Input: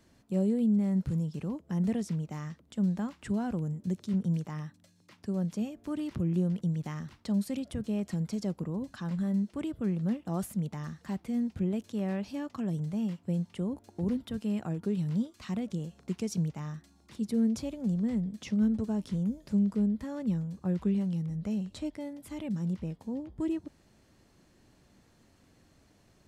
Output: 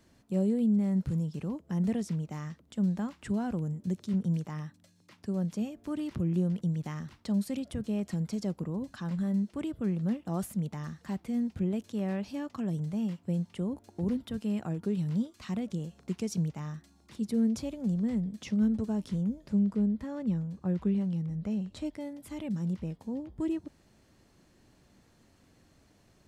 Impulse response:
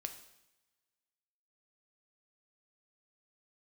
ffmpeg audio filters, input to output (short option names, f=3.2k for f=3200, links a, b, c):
-filter_complex "[0:a]asettb=1/sr,asplit=3[a][b][c];[a]atrim=end=19.214[d];[b]atrim=start=19.21:end=21.77,asetpts=PTS-STARTPTS,afade=t=in:d=0.004:c=qsin,afade=t=out:st=2.556:d=0.004:c=qsin,highshelf=f=4.7k:g=-7.5[e];[c]atrim=start=21.766[f];[d][e]acrossfade=d=0.004:c1=hsin:c2=qsin[g];[g][f]acrossfade=d=0.004:c1=qsin:c2=hsin"